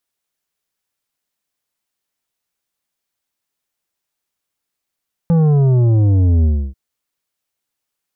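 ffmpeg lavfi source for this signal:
-f lavfi -i "aevalsrc='0.299*clip((1.44-t)/0.3,0,1)*tanh(2.82*sin(2*PI*170*1.44/log(65/170)*(exp(log(65/170)*t/1.44)-1)))/tanh(2.82)':d=1.44:s=44100"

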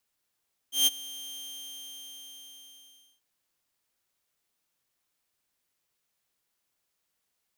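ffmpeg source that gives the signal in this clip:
-f lavfi -i "aevalsrc='0.168*(2*mod(3170*t,1)-1)':d=2.49:s=44100,afade=t=in:d=0.146,afade=t=out:st=0.146:d=0.028:silence=0.0944,afade=t=out:st=0.61:d=1.88"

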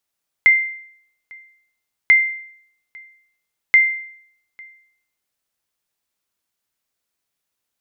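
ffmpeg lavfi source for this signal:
-f lavfi -i "aevalsrc='0.562*(sin(2*PI*2090*mod(t,1.64))*exp(-6.91*mod(t,1.64)/0.65)+0.0398*sin(2*PI*2090*max(mod(t,1.64)-0.85,0))*exp(-6.91*max(mod(t,1.64)-0.85,0)/0.65))':d=4.92:s=44100"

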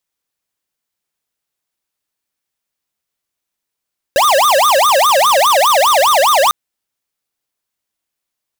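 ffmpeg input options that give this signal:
-f lavfi -i "aevalsrc='0.299*(2*lt(mod((881*t-349/(2*PI*4.9)*sin(2*PI*4.9*t)),1),0.5)-1)':d=2.35:s=44100"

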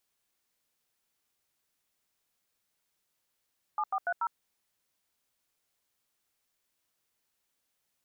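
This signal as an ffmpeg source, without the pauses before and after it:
-f lavfi -i "aevalsrc='0.0316*clip(min(mod(t,0.144),0.058-mod(t,0.144))/0.002,0,1)*(eq(floor(t/0.144),0)*(sin(2*PI*852*mod(t,0.144))+sin(2*PI*1209*mod(t,0.144)))+eq(floor(t/0.144),1)*(sin(2*PI*770*mod(t,0.144))+sin(2*PI*1209*mod(t,0.144)))+eq(floor(t/0.144),2)*(sin(2*PI*697*mod(t,0.144))+sin(2*PI*1477*mod(t,0.144)))+eq(floor(t/0.144),3)*(sin(2*PI*941*mod(t,0.144))+sin(2*PI*1336*mod(t,0.144))))':d=0.576:s=44100"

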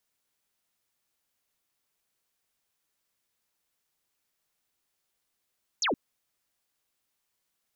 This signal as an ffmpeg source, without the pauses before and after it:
-f lavfi -i "aevalsrc='0.0631*clip(t/0.002,0,1)*clip((0.12-t)/0.002,0,1)*sin(2*PI*7200*0.12/log(210/7200)*(exp(log(210/7200)*t/0.12)-1))':d=0.12:s=44100"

